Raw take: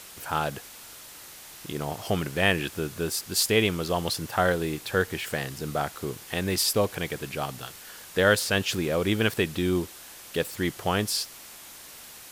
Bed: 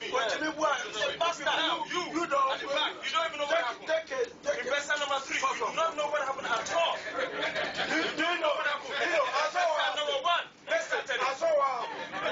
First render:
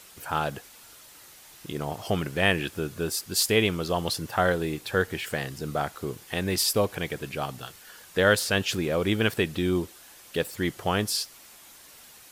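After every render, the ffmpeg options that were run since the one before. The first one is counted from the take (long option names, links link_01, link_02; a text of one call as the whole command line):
ffmpeg -i in.wav -af "afftdn=noise_reduction=6:noise_floor=-46" out.wav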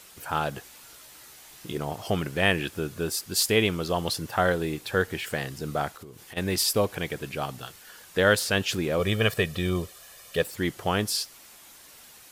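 ffmpeg -i in.wav -filter_complex "[0:a]asettb=1/sr,asplit=3[link_01][link_02][link_03];[link_01]atrim=end=0.554[link_04];[link_02]atrim=start=0.55:end=1.78,asetpts=PTS-STARTPTS,afade=type=in:duration=0.004:curve=qsin,afade=type=out:start_time=1.226:duration=0.004:curve=qsin,asplit=2[link_05][link_06];[link_06]adelay=16,volume=-5dB[link_07];[link_05][link_07]amix=inputs=2:normalize=0,atrim=end_sample=54243[link_08];[link_03]atrim=start=1.776[link_09];[link_04][link_08]acrossfade=duration=0.004:curve1=hsin:curve2=qsin[link_10];[link_10][link_09]acrossfade=duration=0.004:curve1=qsin:curve2=hsin,asplit=3[link_11][link_12][link_13];[link_11]afade=type=out:start_time=5.92:duration=0.02[link_14];[link_12]acompressor=threshold=-40dB:ratio=8:attack=3.2:release=140:knee=1:detection=peak,afade=type=in:start_time=5.92:duration=0.02,afade=type=out:start_time=6.36:duration=0.02[link_15];[link_13]afade=type=in:start_time=6.36:duration=0.02[link_16];[link_14][link_15][link_16]amix=inputs=3:normalize=0,asettb=1/sr,asplit=3[link_17][link_18][link_19];[link_17]atrim=end=8.994[link_20];[link_18]atrim=start=8.99:end=10.42,asetpts=PTS-STARTPTS,afade=type=in:duration=0.004:curve=qsin,afade=type=out:start_time=1.426:duration=0.004:curve=qsin,aecho=1:1:1.7:0.65,atrim=end_sample=63063[link_21];[link_19]atrim=start=10.416[link_22];[link_20][link_21]acrossfade=duration=0.004:curve1=hsin:curve2=qsin[link_23];[link_23][link_22]acrossfade=duration=0.004:curve1=qsin:curve2=hsin" out.wav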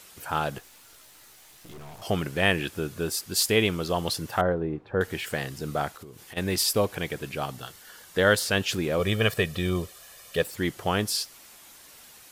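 ffmpeg -i in.wav -filter_complex "[0:a]asettb=1/sr,asplit=3[link_01][link_02][link_03];[link_01]atrim=end=0.584[link_04];[link_02]atrim=start=0.58:end=2.02,asetpts=PTS-STARTPTS,afade=type=in:duration=0.004:curve=qsin,afade=type=out:start_time=1.436:duration=0.004:curve=qsin,aeval=exprs='(tanh(126*val(0)+0.7)-tanh(0.7))/126':channel_layout=same[link_05];[link_03]atrim=start=2.016[link_06];[link_04][link_05]acrossfade=duration=0.004:curve1=hsin:curve2=qsin[link_07];[link_07][link_06]acrossfade=duration=0.004:curve1=qsin:curve2=hsin,asettb=1/sr,asplit=3[link_08][link_09][link_10];[link_08]atrim=end=4.414[link_11];[link_09]atrim=start=4.41:end=5.01,asetpts=PTS-STARTPTS,afade=type=in:duration=0.004:curve=qsin,afade=type=out:start_time=0.596:duration=0.004:curve=qsin,lowpass=1000[link_12];[link_10]atrim=start=5.006[link_13];[link_11][link_12]acrossfade=duration=0.004:curve1=hsin:curve2=qsin[link_14];[link_14][link_13]acrossfade=duration=0.004:curve1=qsin:curve2=hsin,asettb=1/sr,asplit=3[link_15][link_16][link_17];[link_15]atrim=end=7.514[link_18];[link_16]atrim=start=7.51:end=8.44,asetpts=PTS-STARTPTS,afade=type=in:duration=0.004:curve=qsin,afade=type=out:start_time=0.926:duration=0.004:curve=qsin,bandreject=frequency=2500:width=12[link_19];[link_17]atrim=start=8.436[link_20];[link_18][link_19]acrossfade=duration=0.004:curve1=hsin:curve2=qsin[link_21];[link_21][link_20]acrossfade=duration=0.004:curve1=qsin:curve2=hsin" out.wav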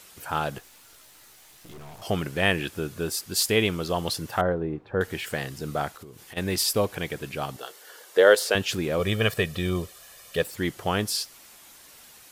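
ffmpeg -i in.wav -filter_complex "[0:a]asettb=1/sr,asplit=3[link_01][link_02][link_03];[link_01]atrim=end=7.564[link_04];[link_02]atrim=start=7.56:end=8.55,asetpts=PTS-STARTPTS,afade=type=in:duration=0.004:curve=qsin,afade=type=out:start_time=0.986:duration=0.004:curve=qsin,highpass=frequency=440:width_type=q:width=2.4[link_05];[link_03]atrim=start=8.546[link_06];[link_04][link_05]acrossfade=duration=0.004:curve1=hsin:curve2=qsin[link_07];[link_07][link_06]acrossfade=duration=0.004:curve1=qsin:curve2=hsin" out.wav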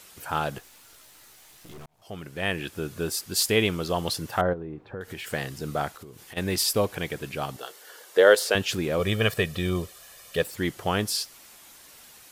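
ffmpeg -i in.wav -filter_complex "[0:a]asettb=1/sr,asplit=3[link_01][link_02][link_03];[link_01]atrim=end=4.534[link_04];[link_02]atrim=start=4.53:end=5.32,asetpts=PTS-STARTPTS,afade=type=in:duration=0.004:curve=qsin,afade=type=out:start_time=0.786:duration=0.004:curve=qsin,acompressor=threshold=-33dB:ratio=4:attack=3.2:release=140:knee=1:detection=peak[link_05];[link_03]atrim=start=5.316[link_06];[link_04][link_05]acrossfade=duration=0.004:curve1=hsin:curve2=qsin[link_07];[link_07][link_06]acrossfade=duration=0.004:curve1=qsin:curve2=hsin,asplit=2[link_08][link_09];[link_08]atrim=end=1.86,asetpts=PTS-STARTPTS,afade=type=out:start_time=1.856:duration=0.004:curve=hsin[link_10];[link_09]atrim=start=1.86,asetpts=PTS-STARTPTS,afade=type=in:duration=1.12[link_11];[link_10][link_11]concat=n=2:v=0:a=1" out.wav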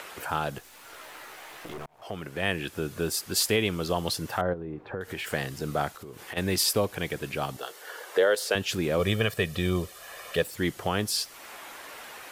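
ffmpeg -i in.wav -filter_complex "[0:a]acrossover=split=340|2600[link_01][link_02][link_03];[link_02]acompressor=mode=upward:threshold=-31dB:ratio=2.5[link_04];[link_01][link_04][link_03]amix=inputs=3:normalize=0,alimiter=limit=-13dB:level=0:latency=1:release=286" out.wav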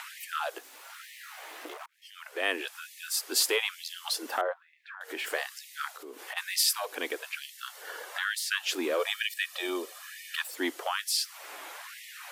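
ffmpeg -i in.wav -filter_complex "[0:a]acrossover=split=860[link_01][link_02];[link_01]asoftclip=type=tanh:threshold=-23dB[link_03];[link_03][link_02]amix=inputs=2:normalize=0,afftfilt=real='re*gte(b*sr/1024,220*pow(1800/220,0.5+0.5*sin(2*PI*1.1*pts/sr)))':imag='im*gte(b*sr/1024,220*pow(1800/220,0.5+0.5*sin(2*PI*1.1*pts/sr)))':win_size=1024:overlap=0.75" out.wav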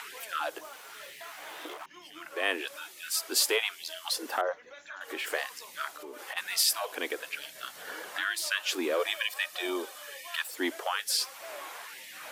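ffmpeg -i in.wav -i bed.wav -filter_complex "[1:a]volume=-20dB[link_01];[0:a][link_01]amix=inputs=2:normalize=0" out.wav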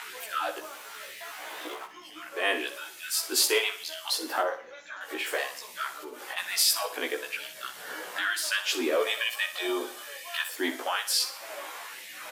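ffmpeg -i in.wav -filter_complex "[0:a]asplit=2[link_01][link_02];[link_02]adelay=16,volume=-2dB[link_03];[link_01][link_03]amix=inputs=2:normalize=0,asplit=2[link_04][link_05];[link_05]aecho=0:1:61|122|183|244:0.266|0.112|0.0469|0.0197[link_06];[link_04][link_06]amix=inputs=2:normalize=0" out.wav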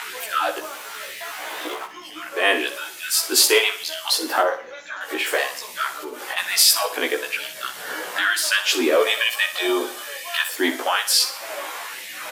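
ffmpeg -i in.wav -af "volume=8.5dB,alimiter=limit=-2dB:level=0:latency=1" out.wav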